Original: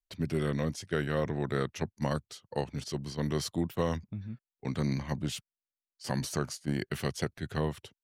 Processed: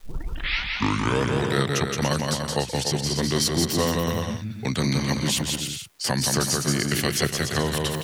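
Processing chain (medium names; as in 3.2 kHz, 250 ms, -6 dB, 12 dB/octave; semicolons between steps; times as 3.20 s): tape start-up on the opening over 1.35 s; reverse; upward compressor, threshold -37 dBFS; reverse; treble shelf 2.2 kHz +11.5 dB; crackle 450 per s -61 dBFS; on a send: bouncing-ball echo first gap 170 ms, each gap 0.7×, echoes 5; on the sum: three bands compressed up and down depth 40%; trim +5.5 dB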